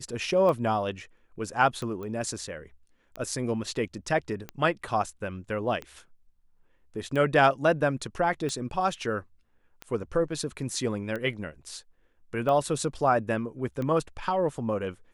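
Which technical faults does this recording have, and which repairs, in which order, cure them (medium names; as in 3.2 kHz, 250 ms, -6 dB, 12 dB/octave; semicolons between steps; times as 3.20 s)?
tick 45 rpm -21 dBFS
2.03 s: pop -27 dBFS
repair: de-click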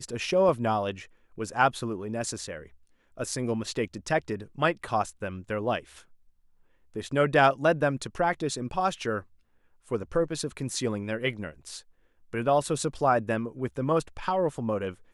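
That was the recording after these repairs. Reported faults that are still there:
nothing left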